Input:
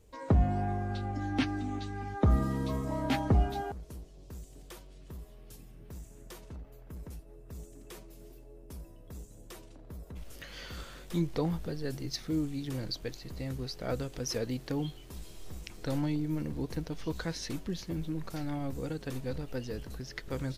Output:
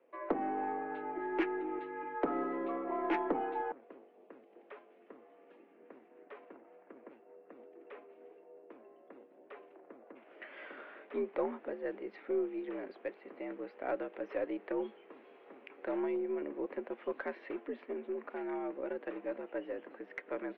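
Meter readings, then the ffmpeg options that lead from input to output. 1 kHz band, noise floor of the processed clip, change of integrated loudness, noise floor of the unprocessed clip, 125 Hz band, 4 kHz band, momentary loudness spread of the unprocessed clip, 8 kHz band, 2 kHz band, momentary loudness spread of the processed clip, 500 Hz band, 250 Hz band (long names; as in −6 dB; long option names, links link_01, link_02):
+0.5 dB, −62 dBFS, −4.5 dB, −52 dBFS, below −30 dB, below −15 dB, 20 LU, below −30 dB, −0.5 dB, 22 LU, +2.0 dB, −5.5 dB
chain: -af "highpass=frequency=240:width_type=q:width=0.5412,highpass=frequency=240:width_type=q:width=1.307,lowpass=frequency=2400:width_type=q:width=0.5176,lowpass=frequency=2400:width_type=q:width=0.7071,lowpass=frequency=2400:width_type=q:width=1.932,afreqshift=66,aeval=exprs='0.133*(cos(1*acos(clip(val(0)/0.133,-1,1)))-cos(1*PI/2))+0.00237*(cos(6*acos(clip(val(0)/0.133,-1,1)))-cos(6*PI/2))':channel_layout=same,asoftclip=type=tanh:threshold=-21dB"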